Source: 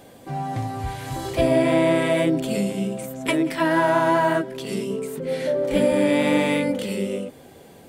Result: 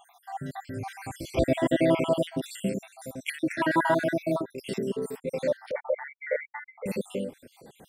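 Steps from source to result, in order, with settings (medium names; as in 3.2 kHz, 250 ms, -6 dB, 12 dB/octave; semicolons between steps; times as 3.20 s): random holes in the spectrogram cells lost 65%; 5.71–6.86 s: brick-wall FIR band-pass 420–2300 Hz; trim -1.5 dB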